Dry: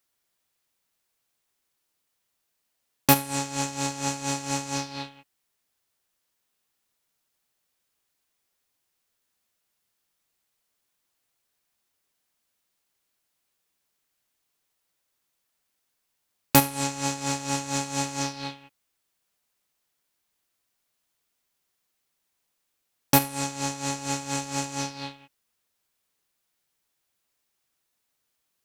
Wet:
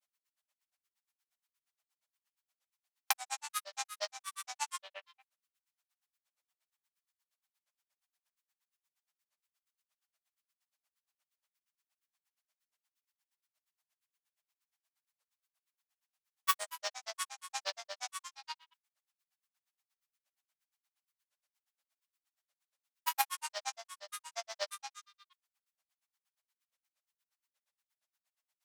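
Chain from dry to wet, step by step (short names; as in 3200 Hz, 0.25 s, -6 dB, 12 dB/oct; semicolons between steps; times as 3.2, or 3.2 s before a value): elliptic high-pass 750 Hz, stop band 40 dB; grains 78 ms, grains 8.5/s, pitch spread up and down by 7 st; gain -3.5 dB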